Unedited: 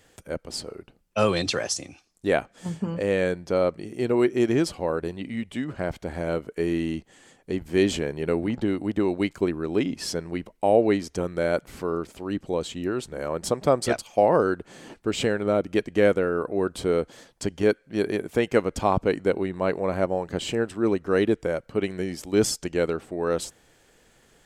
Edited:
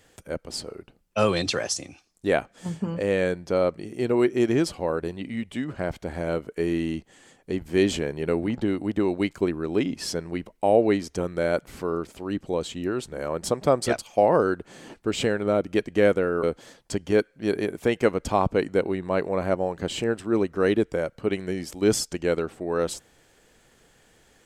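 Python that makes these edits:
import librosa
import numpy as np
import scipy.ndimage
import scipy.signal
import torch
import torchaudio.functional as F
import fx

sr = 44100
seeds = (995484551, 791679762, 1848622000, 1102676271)

y = fx.edit(x, sr, fx.cut(start_s=16.43, length_s=0.51), tone=tone)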